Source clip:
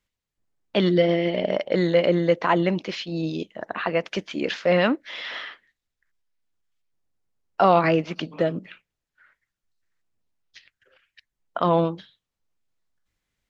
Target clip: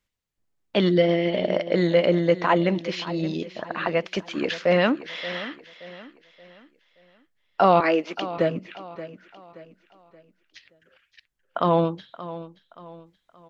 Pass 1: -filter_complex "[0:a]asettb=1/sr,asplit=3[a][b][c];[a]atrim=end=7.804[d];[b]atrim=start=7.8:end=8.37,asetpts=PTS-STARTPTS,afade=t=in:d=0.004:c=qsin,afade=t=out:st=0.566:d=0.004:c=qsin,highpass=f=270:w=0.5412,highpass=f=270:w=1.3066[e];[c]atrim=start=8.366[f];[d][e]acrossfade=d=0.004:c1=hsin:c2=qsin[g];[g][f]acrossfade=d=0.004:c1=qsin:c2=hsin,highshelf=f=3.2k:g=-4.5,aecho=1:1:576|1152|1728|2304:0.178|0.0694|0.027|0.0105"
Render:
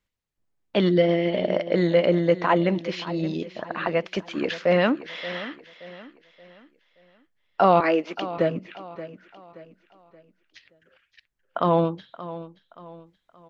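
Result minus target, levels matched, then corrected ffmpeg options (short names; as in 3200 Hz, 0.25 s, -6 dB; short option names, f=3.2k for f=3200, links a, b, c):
8000 Hz band -3.5 dB
-filter_complex "[0:a]asettb=1/sr,asplit=3[a][b][c];[a]atrim=end=7.804[d];[b]atrim=start=7.8:end=8.37,asetpts=PTS-STARTPTS,afade=t=in:d=0.004:c=qsin,afade=t=out:st=0.566:d=0.004:c=qsin,highpass=f=270:w=0.5412,highpass=f=270:w=1.3066[e];[c]atrim=start=8.366[f];[d][e]acrossfade=d=0.004:c1=hsin:c2=qsin[g];[g][f]acrossfade=d=0.004:c1=qsin:c2=hsin,aecho=1:1:576|1152|1728|2304:0.178|0.0694|0.027|0.0105"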